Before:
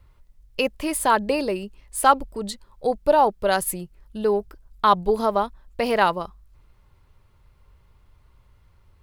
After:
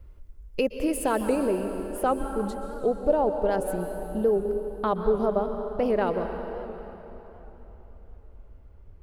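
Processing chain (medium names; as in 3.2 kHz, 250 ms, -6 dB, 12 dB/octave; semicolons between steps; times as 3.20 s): ten-band graphic EQ 125 Hz -10 dB, 1 kHz -12 dB, 2 kHz -7 dB, 4 kHz -11 dB, 8 kHz -4 dB, 16 kHz -9 dB; compression 1.5:1, threshold -40 dBFS, peak gain reduction 8.5 dB; treble shelf 2.8 kHz -2.5 dB, from 1.35 s -11.5 dB; plate-style reverb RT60 3.7 s, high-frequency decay 0.8×, pre-delay 110 ms, DRR 6 dB; warped record 78 rpm, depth 100 cents; trim +8.5 dB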